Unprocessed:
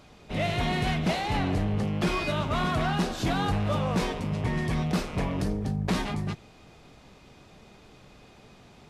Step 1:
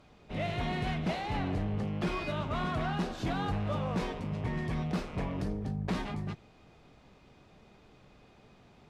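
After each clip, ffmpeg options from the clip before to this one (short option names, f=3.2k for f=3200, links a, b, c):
-af "aemphasis=mode=reproduction:type=cd,volume=-6dB"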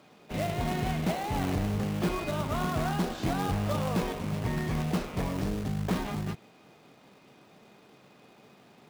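-filter_complex "[0:a]acrossover=split=130|1200[a][b][c];[a]aeval=exprs='sgn(val(0))*max(abs(val(0))-0.00211,0)':c=same[d];[b]acrusher=bits=2:mode=log:mix=0:aa=0.000001[e];[c]alimiter=level_in=15.5dB:limit=-24dB:level=0:latency=1,volume=-15.5dB[f];[d][e][f]amix=inputs=3:normalize=0,volume=3.5dB"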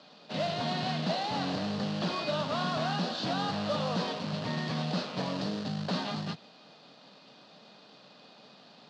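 -af "crystalizer=i=4:c=0,aeval=exprs='0.0794*(abs(mod(val(0)/0.0794+3,4)-2)-1)':c=same,highpass=f=150:w=0.5412,highpass=f=150:w=1.3066,equalizer=f=370:t=q:w=4:g=-8,equalizer=f=590:t=q:w=4:g=4,equalizer=f=2.2k:t=q:w=4:g=-9,equalizer=f=4.4k:t=q:w=4:g=7,lowpass=f=4.5k:w=0.5412,lowpass=f=4.5k:w=1.3066"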